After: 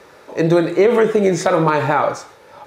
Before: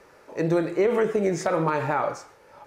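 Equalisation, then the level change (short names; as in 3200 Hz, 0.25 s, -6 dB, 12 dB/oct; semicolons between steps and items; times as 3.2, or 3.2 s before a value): HPF 59 Hz; bell 3700 Hz +7.5 dB 0.28 oct; +8.5 dB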